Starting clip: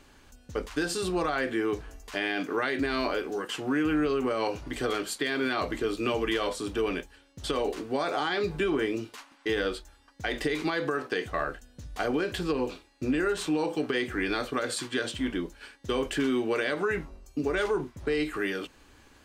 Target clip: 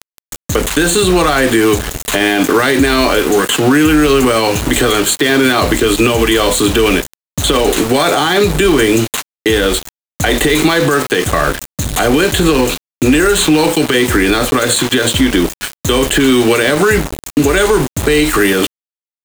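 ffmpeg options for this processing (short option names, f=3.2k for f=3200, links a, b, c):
-filter_complex "[0:a]acrossover=split=110|240|1400|5100[a][b][c][d][e];[a]acompressor=threshold=-47dB:ratio=4[f];[b]acompressor=threshold=-49dB:ratio=4[g];[c]acompressor=threshold=-35dB:ratio=4[h];[d]acompressor=threshold=-42dB:ratio=4[i];[e]acompressor=threshold=-55dB:ratio=4[j];[f][g][h][i][j]amix=inputs=5:normalize=0,asuperstop=centerf=5200:order=8:qfactor=2.6,bass=f=250:g=4,treble=f=4k:g=12,aeval=exprs='val(0)*gte(abs(val(0)),0.00944)':c=same,alimiter=level_in=26dB:limit=-1dB:release=50:level=0:latency=1,volume=-1dB"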